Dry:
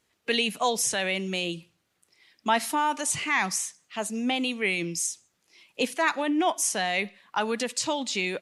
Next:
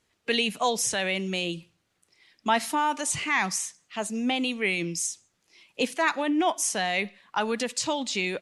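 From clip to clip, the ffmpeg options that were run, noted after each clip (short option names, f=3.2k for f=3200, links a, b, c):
-af "lowpass=11k,lowshelf=f=85:g=6.5"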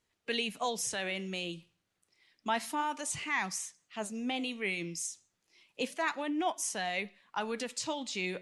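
-af "flanger=delay=1:depth=10:regen=86:speed=0.3:shape=sinusoidal,volume=-3.5dB"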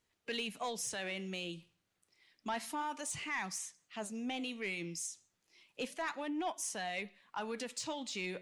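-filter_complex "[0:a]asplit=2[a][b];[b]acompressor=threshold=-41dB:ratio=6,volume=-3dB[c];[a][c]amix=inputs=2:normalize=0,asoftclip=type=tanh:threshold=-23.5dB,volume=-5.5dB"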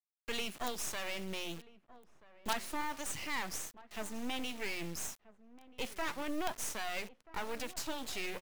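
-filter_complex "[0:a]acrusher=bits=6:dc=4:mix=0:aa=0.000001,asplit=2[a][b];[b]adelay=1283,volume=-18dB,highshelf=f=4k:g=-28.9[c];[a][c]amix=inputs=2:normalize=0,volume=4.5dB"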